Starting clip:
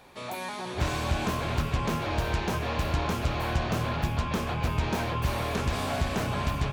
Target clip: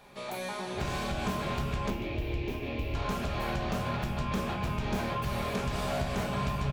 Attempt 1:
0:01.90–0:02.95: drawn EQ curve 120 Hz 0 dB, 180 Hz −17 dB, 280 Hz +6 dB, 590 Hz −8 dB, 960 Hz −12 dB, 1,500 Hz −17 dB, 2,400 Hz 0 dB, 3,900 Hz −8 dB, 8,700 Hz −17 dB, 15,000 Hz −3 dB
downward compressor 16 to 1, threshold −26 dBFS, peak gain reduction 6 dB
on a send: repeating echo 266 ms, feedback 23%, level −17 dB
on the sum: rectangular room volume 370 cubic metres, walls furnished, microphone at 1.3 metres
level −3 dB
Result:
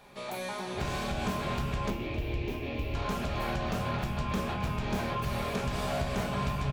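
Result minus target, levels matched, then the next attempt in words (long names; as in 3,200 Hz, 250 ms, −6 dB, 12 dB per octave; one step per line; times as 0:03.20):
echo 122 ms late
0:01.90–0:02.95: drawn EQ curve 120 Hz 0 dB, 180 Hz −17 dB, 280 Hz +6 dB, 590 Hz −8 dB, 960 Hz −12 dB, 1,500 Hz −17 dB, 2,400 Hz 0 dB, 3,900 Hz −8 dB, 8,700 Hz −17 dB, 15,000 Hz −3 dB
downward compressor 16 to 1, threshold −26 dBFS, peak gain reduction 6 dB
on a send: repeating echo 144 ms, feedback 23%, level −17 dB
on the sum: rectangular room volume 370 cubic metres, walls furnished, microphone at 1.3 metres
level −3 dB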